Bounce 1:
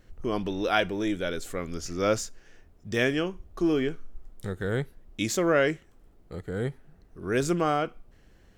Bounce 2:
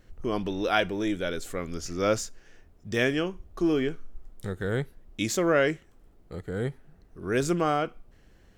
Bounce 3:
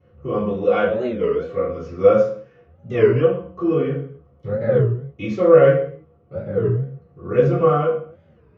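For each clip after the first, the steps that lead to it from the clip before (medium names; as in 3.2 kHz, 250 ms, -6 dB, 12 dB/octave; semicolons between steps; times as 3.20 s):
no audible change
band-pass filter 430 Hz, Q 0.8; reverberation RT60 0.50 s, pre-delay 3 ms, DRR -13.5 dB; warped record 33 1/3 rpm, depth 250 cents; trim -9.5 dB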